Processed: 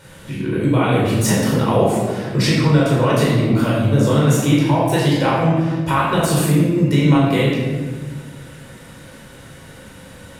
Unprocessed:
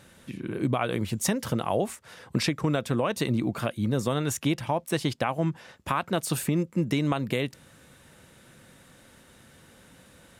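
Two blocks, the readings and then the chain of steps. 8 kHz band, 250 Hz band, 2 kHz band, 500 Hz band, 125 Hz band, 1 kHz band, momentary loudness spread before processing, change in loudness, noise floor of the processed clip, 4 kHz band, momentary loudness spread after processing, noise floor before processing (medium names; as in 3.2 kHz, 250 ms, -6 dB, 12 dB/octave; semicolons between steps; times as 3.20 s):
+8.0 dB, +12.0 dB, +10.5 dB, +11.5 dB, +14.0 dB, +10.5 dB, 6 LU, +11.5 dB, -40 dBFS, +9.5 dB, 9 LU, -56 dBFS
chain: simulated room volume 1000 m³, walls mixed, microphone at 4.7 m; in parallel at -0.5 dB: compression, threshold -23 dBFS, peak gain reduction 13.5 dB; on the sum: trim -1.5 dB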